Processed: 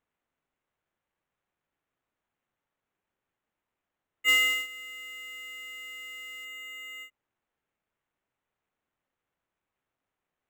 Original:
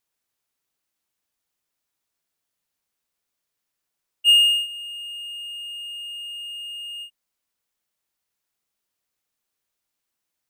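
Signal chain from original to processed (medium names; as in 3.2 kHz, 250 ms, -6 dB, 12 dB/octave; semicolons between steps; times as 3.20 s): sample-and-hold 9×; treble shelf 4.8 kHz -10 dB; 4.28–6.45 s: short-mantissa float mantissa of 2-bit; trim -5.5 dB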